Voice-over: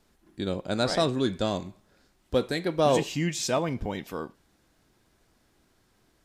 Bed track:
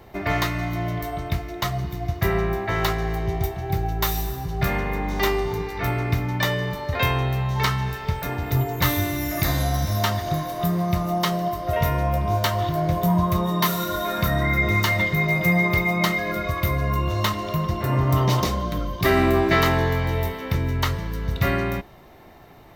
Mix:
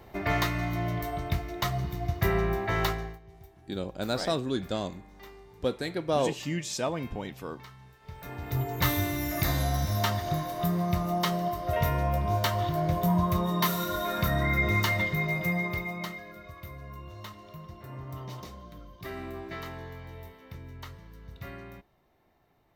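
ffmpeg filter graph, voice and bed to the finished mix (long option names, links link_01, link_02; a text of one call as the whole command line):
ffmpeg -i stem1.wav -i stem2.wav -filter_complex "[0:a]adelay=3300,volume=-4dB[link_01];[1:a]volume=18dB,afade=type=out:start_time=2.81:duration=0.38:silence=0.0707946,afade=type=in:start_time=8:duration=0.85:silence=0.0794328,afade=type=out:start_time=14.78:duration=1.53:silence=0.16788[link_02];[link_01][link_02]amix=inputs=2:normalize=0" out.wav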